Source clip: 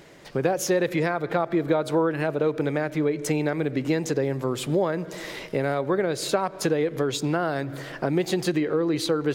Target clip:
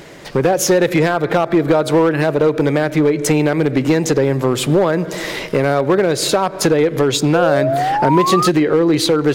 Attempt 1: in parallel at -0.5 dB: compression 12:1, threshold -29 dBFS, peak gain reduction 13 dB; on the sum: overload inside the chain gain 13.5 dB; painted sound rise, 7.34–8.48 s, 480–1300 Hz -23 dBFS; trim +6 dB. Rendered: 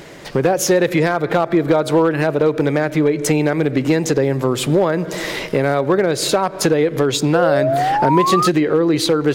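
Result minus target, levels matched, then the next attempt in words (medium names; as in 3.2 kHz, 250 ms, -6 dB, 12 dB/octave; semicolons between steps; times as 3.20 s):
compression: peak gain reduction +6.5 dB
in parallel at -0.5 dB: compression 12:1, threshold -22 dBFS, peak gain reduction 6.5 dB; on the sum: overload inside the chain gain 13.5 dB; painted sound rise, 7.34–8.48 s, 480–1300 Hz -23 dBFS; trim +6 dB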